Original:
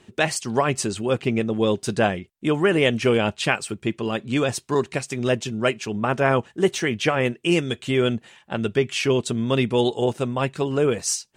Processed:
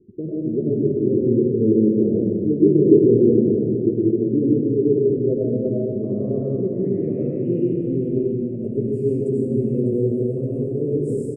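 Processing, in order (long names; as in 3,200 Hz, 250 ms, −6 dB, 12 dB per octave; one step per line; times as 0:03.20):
low-pass filter sweep 380 Hz → 6,100 Hz, 0:04.78–0:08.43
inverse Chebyshev band-stop filter 800–6,300 Hz, stop band 40 dB
high-shelf EQ 2,000 Hz −7.5 dB
single-tap delay 598 ms −11 dB
comb and all-pass reverb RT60 2.1 s, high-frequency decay 0.8×, pre-delay 55 ms, DRR −6 dB
level −3.5 dB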